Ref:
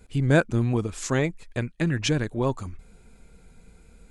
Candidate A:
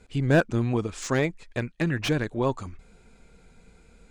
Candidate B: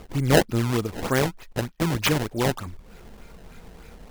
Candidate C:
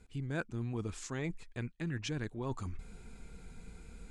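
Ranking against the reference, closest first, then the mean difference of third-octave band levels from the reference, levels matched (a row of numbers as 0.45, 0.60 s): A, C, B; 2.0, 3.0, 8.5 dB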